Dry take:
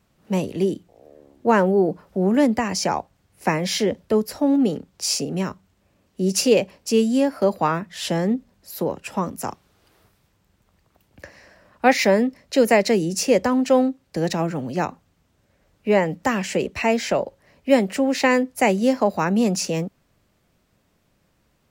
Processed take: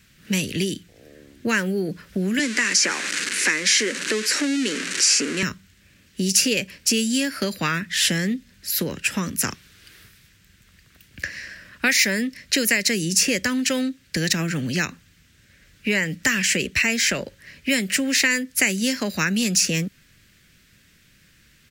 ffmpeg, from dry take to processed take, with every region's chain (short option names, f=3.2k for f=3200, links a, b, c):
-filter_complex "[0:a]asettb=1/sr,asplit=3[a][b][c];[a]atrim=end=2.394[d];[b]atrim=start=2.39:end=5.43,asetpts=PTS-STARTPTS,afade=t=in:d=0.004:c=qsin,afade=t=out:st=3.036:d=0.004:c=qsin,aeval=exprs='val(0)+0.5*0.0501*sgn(val(0))':c=same,highpass=f=280:w=0.5412,highpass=f=280:w=1.3066,equalizer=f=690:t=q:w=4:g=-8,equalizer=f=3.4k:t=q:w=4:g=-5,equalizer=f=5.1k:t=q:w=4:g=-3,lowpass=f=8.5k:w=0.5412,lowpass=f=8.5k:w=1.3066[e];[c]atrim=start=5.426[f];[d][e]acrossfade=d=0.004:c1=hsin:c2=qsin[g];[g][f]acrossfade=d=0.004:c1=qsin:c2=hsin,firequalizer=gain_entry='entry(150,0);entry(810,-17);entry(1600,8);entry(13000,5)':delay=0.05:min_phase=1,acrossover=split=2400|6000[h][i][j];[h]acompressor=threshold=-30dB:ratio=4[k];[i]acompressor=threshold=-35dB:ratio=4[l];[j]acompressor=threshold=-27dB:ratio=4[m];[k][l][m]amix=inputs=3:normalize=0,volume=7.5dB"